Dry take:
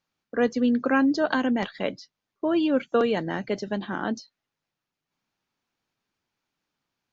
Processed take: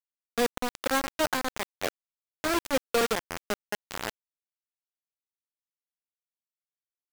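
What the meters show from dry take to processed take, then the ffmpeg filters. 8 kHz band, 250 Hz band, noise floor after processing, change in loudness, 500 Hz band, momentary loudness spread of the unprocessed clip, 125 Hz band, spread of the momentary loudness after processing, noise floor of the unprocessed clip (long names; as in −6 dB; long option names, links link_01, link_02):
can't be measured, −12.0 dB, below −85 dBFS, −5.0 dB, −4.5 dB, 10 LU, −8.5 dB, 10 LU, below −85 dBFS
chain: -filter_complex "[0:a]acrossover=split=320 2100:gain=0.158 1 0.224[link_01][link_02][link_03];[link_01][link_02][link_03]amix=inputs=3:normalize=0,aeval=exprs='sgn(val(0))*max(abs(val(0))-0.00398,0)':channel_layout=same,acrusher=bits=3:mix=0:aa=0.000001,volume=-2dB"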